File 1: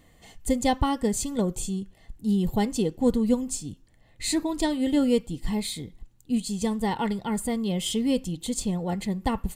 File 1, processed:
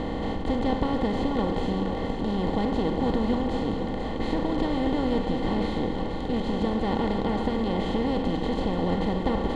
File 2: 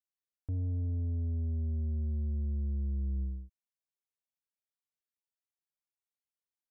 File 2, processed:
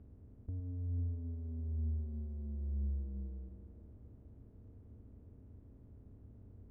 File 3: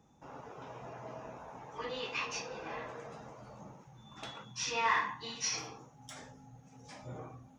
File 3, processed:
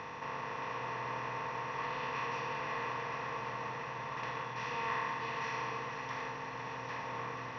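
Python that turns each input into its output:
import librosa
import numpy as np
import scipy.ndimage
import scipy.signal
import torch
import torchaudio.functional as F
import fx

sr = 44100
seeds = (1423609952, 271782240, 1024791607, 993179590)

y = fx.bin_compress(x, sr, power=0.2)
y = fx.air_absorb(y, sr, metres=310.0)
y = fx.echo_split(y, sr, split_hz=300.0, low_ms=113, high_ms=485, feedback_pct=52, wet_db=-7.5)
y = y * 10.0 ** (-8.5 / 20.0)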